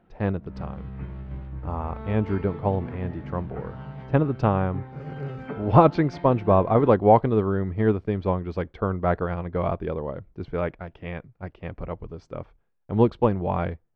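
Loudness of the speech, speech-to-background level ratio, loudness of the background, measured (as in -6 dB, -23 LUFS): -24.0 LUFS, 14.5 dB, -38.5 LUFS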